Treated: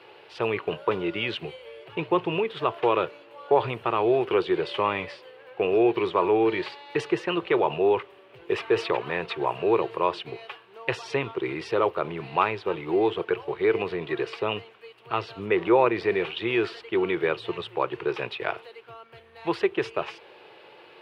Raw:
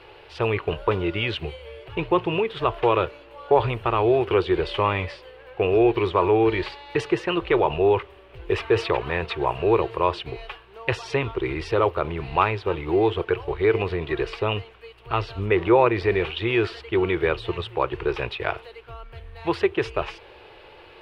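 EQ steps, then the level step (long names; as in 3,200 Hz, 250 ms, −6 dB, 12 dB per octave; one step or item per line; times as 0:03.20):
high-pass filter 140 Hz 24 dB per octave
−2.5 dB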